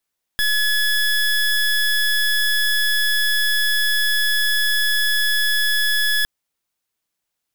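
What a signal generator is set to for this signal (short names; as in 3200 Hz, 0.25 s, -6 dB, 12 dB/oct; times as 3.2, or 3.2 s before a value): pulse 1700 Hz, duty 23% -18 dBFS 5.86 s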